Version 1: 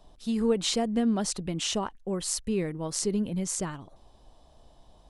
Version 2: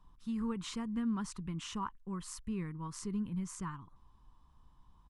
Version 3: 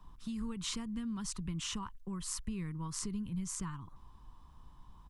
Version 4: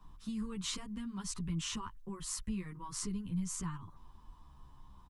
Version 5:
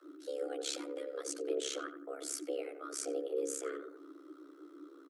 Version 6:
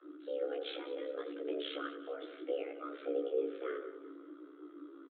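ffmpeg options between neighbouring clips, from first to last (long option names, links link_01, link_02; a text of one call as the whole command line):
ffmpeg -i in.wav -af "firequalizer=gain_entry='entry(160,0);entry(640,-24);entry(1000,5);entry(1600,-3);entry(4100,-13);entry(6000,-11)':delay=0.05:min_phase=1,volume=-5dB" out.wav
ffmpeg -i in.wav -filter_complex "[0:a]acrossover=split=130|3000[link_01][link_02][link_03];[link_02]acompressor=threshold=-49dB:ratio=6[link_04];[link_01][link_04][link_03]amix=inputs=3:normalize=0,volume=7dB" out.wav
ffmpeg -i in.wav -filter_complex "[0:a]asplit=2[link_01][link_02];[link_02]adelay=10.7,afreqshift=-0.46[link_03];[link_01][link_03]amix=inputs=2:normalize=1,volume=3dB" out.wav
ffmpeg -i in.wav -filter_complex "[0:a]tremolo=f=68:d=0.947,asplit=2[link_01][link_02];[link_02]adelay=87,lowpass=frequency=1300:poles=1,volume=-8.5dB,asplit=2[link_03][link_04];[link_04]adelay=87,lowpass=frequency=1300:poles=1,volume=0.42,asplit=2[link_05][link_06];[link_06]adelay=87,lowpass=frequency=1300:poles=1,volume=0.42,asplit=2[link_07][link_08];[link_08]adelay=87,lowpass=frequency=1300:poles=1,volume=0.42,asplit=2[link_09][link_10];[link_10]adelay=87,lowpass=frequency=1300:poles=1,volume=0.42[link_11];[link_01][link_03][link_05][link_07][link_09][link_11]amix=inputs=6:normalize=0,afreqshift=280,volume=3.5dB" out.wav
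ffmpeg -i in.wav -af "aecho=1:1:193|386|579|772:0.168|0.0789|0.0371|0.0174,aresample=8000,aresample=44100,flanger=delay=16.5:depth=2.3:speed=0.66,volume=3.5dB" out.wav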